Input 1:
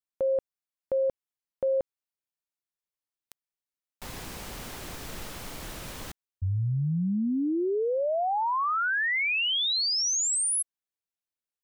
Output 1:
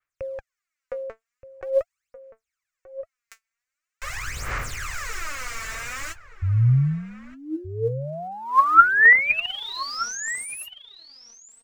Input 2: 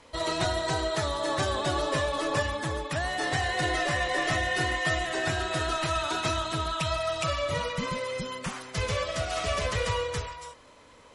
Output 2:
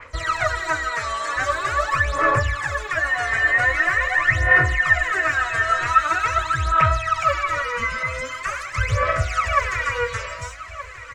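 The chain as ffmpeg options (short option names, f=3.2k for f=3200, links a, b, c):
-filter_complex "[0:a]firequalizer=gain_entry='entry(120,0);entry(180,-15);entry(530,-3);entry(860,-5);entry(1200,10);entry(2200,13);entry(3300,-1);entry(7100,7);entry(10000,-6)':delay=0.05:min_phase=1,aphaser=in_gain=1:out_gain=1:delay=4.5:decay=0.78:speed=0.44:type=sinusoidal,asplit=2[a][b];[b]adelay=1224,volume=-13dB,highshelf=f=4k:g=-27.6[c];[a][c]amix=inputs=2:normalize=0,acrossover=split=650|1900[d][e][f];[f]acompressor=threshold=-37dB:ratio=6:attack=1.9:release=27[g];[d][e][g]amix=inputs=3:normalize=0,adynamicequalizer=threshold=0.00794:dfrequency=4000:dqfactor=0.7:tfrequency=4000:tqfactor=0.7:attack=5:release=100:ratio=0.375:range=2:mode=boostabove:tftype=highshelf"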